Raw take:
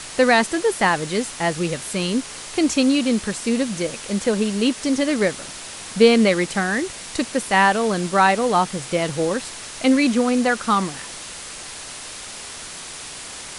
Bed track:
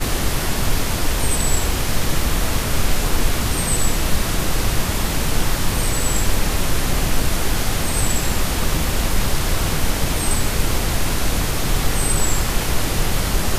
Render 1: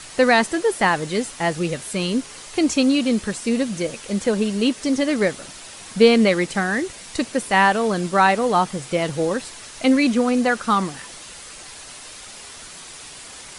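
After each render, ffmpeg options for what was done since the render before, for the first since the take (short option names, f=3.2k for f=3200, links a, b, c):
-af "afftdn=nr=6:nf=-36"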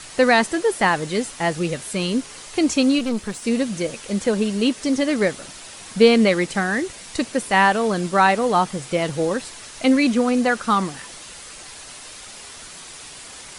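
-filter_complex "[0:a]asplit=3[a][b][c];[a]afade=t=out:st=2.98:d=0.02[d];[b]aeval=exprs='(tanh(7.94*val(0)+0.6)-tanh(0.6))/7.94':c=same,afade=t=in:st=2.98:d=0.02,afade=t=out:st=3.42:d=0.02[e];[c]afade=t=in:st=3.42:d=0.02[f];[d][e][f]amix=inputs=3:normalize=0"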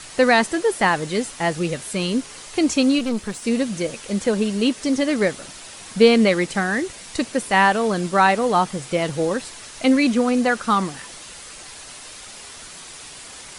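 -af anull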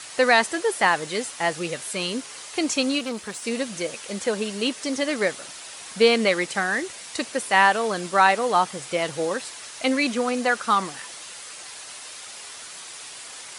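-af "highpass=140,equalizer=f=200:t=o:w=2.1:g=-9"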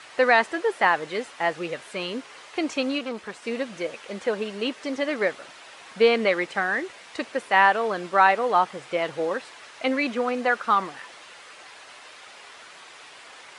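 -af "lowpass=9.2k,bass=f=250:g=-7,treble=f=4k:g=-15"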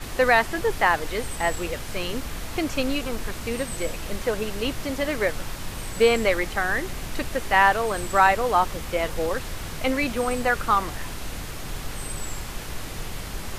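-filter_complex "[1:a]volume=-14dB[a];[0:a][a]amix=inputs=2:normalize=0"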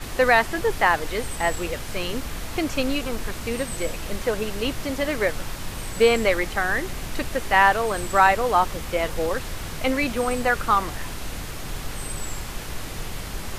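-af "volume=1dB"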